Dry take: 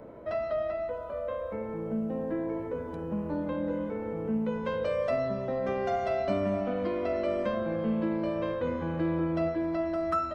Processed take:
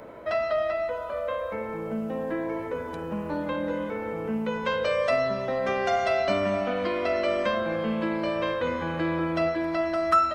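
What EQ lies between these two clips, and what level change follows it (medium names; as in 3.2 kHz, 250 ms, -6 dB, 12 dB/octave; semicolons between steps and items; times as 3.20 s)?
tilt shelf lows -7 dB, about 820 Hz; +6.0 dB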